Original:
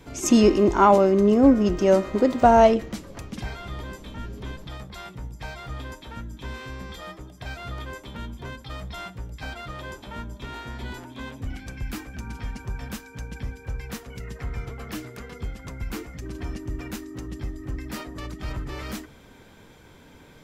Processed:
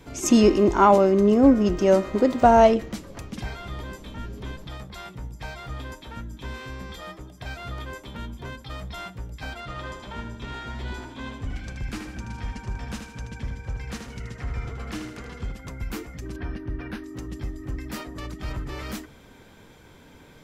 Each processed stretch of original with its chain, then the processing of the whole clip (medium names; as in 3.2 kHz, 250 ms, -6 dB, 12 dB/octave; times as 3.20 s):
9.60–15.52 s: low-pass 8.3 kHz + feedback delay 78 ms, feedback 42%, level -6.5 dB
16.36–17.04 s: boxcar filter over 6 samples + peaking EQ 1.6 kHz +8.5 dB 0.21 oct
whole clip: none